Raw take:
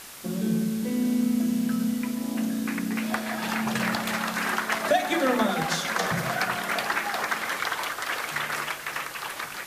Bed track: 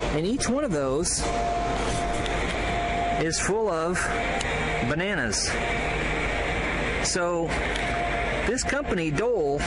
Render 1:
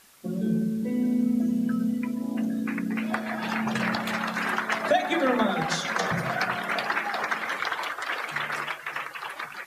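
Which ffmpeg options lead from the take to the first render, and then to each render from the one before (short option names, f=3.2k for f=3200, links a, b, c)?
-af "afftdn=nr=13:nf=-38"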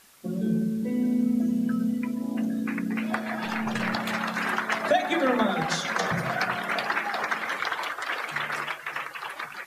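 -filter_complex "[0:a]asettb=1/sr,asplit=3[a][b][c];[a]atrim=end=3.454[d];[b]atrim=start=3.45:end=3.94,asetpts=PTS-STARTPTS,afade=t=in:d=0.004:c=qsin,afade=t=out:st=0.486:d=0.004:c=qsin,aeval=exprs='if(lt(val(0),0),0.708*val(0),val(0))':c=same[e];[c]atrim=start=3.936[f];[d][e]acrossfade=d=0.004:c1=hsin:c2=qsin[g];[g][f]acrossfade=d=0.004:c1=qsin:c2=hsin"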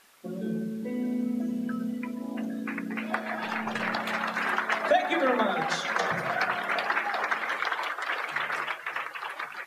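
-af "bass=f=250:g=-10,treble=f=4k:g=-6"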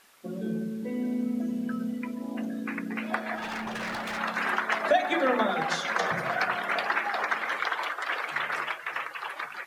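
-filter_complex "[0:a]asettb=1/sr,asplit=3[a][b][c];[a]atrim=end=3.354[d];[b]atrim=start=3.35:end=4.18,asetpts=PTS-STARTPTS,afade=t=in:d=0.004:c=qsin,afade=t=out:st=0.826:d=0.004:c=qsin,asoftclip=type=hard:threshold=-30.5dB[e];[c]atrim=start=4.176[f];[d][e]acrossfade=d=0.004:c1=hsin:c2=qsin[g];[g][f]acrossfade=d=0.004:c1=qsin:c2=hsin"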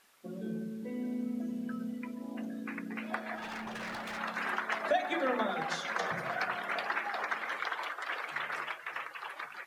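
-af "volume=-6.5dB"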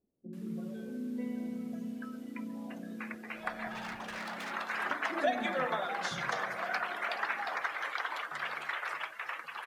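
-filter_complex "[0:a]acrossover=split=390[a][b];[b]adelay=330[c];[a][c]amix=inputs=2:normalize=0"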